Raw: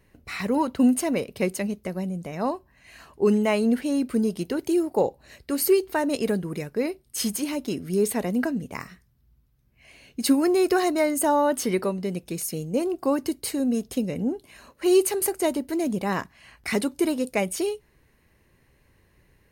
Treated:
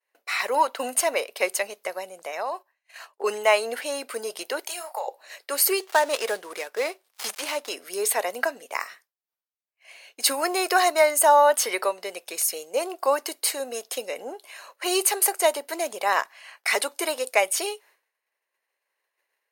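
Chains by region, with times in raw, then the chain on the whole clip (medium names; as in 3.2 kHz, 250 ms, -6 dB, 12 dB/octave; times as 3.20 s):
2.19–3.24 s: gate -50 dBFS, range -9 dB + compression 10:1, threshold -27 dBFS
4.67–5.08 s: high-pass 640 Hz 24 dB/octave + compression 5:1, threshold -32 dBFS + doubling 31 ms -8.5 dB
5.80–7.69 s: dead-time distortion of 0.099 ms + treble shelf 12 kHz -5 dB
whole clip: expander -48 dBFS; high-pass 580 Hz 24 dB/octave; de-esser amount 30%; trim +7 dB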